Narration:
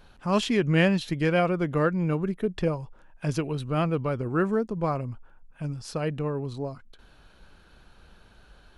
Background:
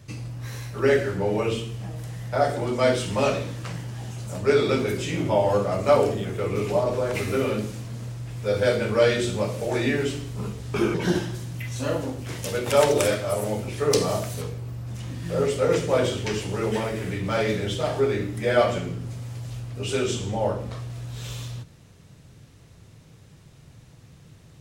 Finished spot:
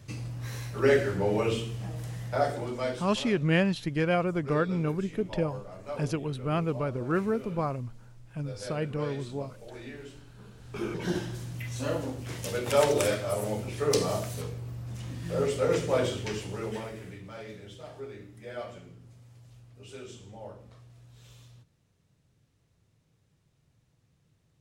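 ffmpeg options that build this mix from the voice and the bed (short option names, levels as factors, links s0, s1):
-filter_complex "[0:a]adelay=2750,volume=0.708[s0];[1:a]volume=4.22,afade=t=out:st=2.15:d=0.97:silence=0.141254,afade=t=in:st=10.47:d=0.96:silence=0.177828,afade=t=out:st=15.96:d=1.37:silence=0.188365[s1];[s0][s1]amix=inputs=2:normalize=0"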